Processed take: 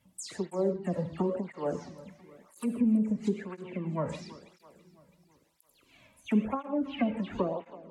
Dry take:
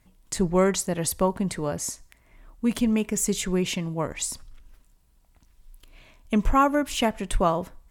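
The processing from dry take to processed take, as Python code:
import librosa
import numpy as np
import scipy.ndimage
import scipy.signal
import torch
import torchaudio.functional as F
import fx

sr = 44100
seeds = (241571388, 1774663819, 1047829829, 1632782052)

p1 = fx.spec_delay(x, sr, highs='early', ms=139)
p2 = scipy.signal.sosfilt(scipy.signal.butter(2, 69.0, 'highpass', fs=sr, output='sos'), p1)
p3 = fx.env_lowpass_down(p2, sr, base_hz=460.0, full_db=-19.0)
p4 = p3 + fx.echo_feedback(p3, sr, ms=331, feedback_pct=54, wet_db=-18, dry=0)
p5 = fx.rev_gated(p4, sr, seeds[0], gate_ms=180, shape='flat', drr_db=8.5)
p6 = fx.flanger_cancel(p5, sr, hz=0.98, depth_ms=2.9)
y = p6 * librosa.db_to_amplitude(-2.0)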